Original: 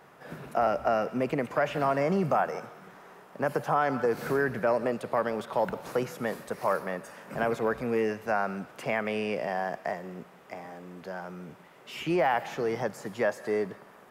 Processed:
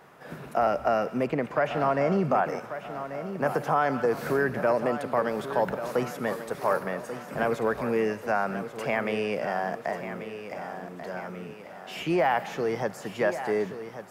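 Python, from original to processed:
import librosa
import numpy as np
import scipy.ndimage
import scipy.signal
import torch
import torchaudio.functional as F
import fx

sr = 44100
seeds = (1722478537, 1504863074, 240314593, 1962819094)

y = fx.high_shelf(x, sr, hz=fx.line((1.26, 5900.0), (2.45, 8400.0)), db=-12.0, at=(1.26, 2.45), fade=0.02)
y = fx.echo_feedback(y, sr, ms=1138, feedback_pct=50, wet_db=-11)
y = y * 10.0 ** (1.5 / 20.0)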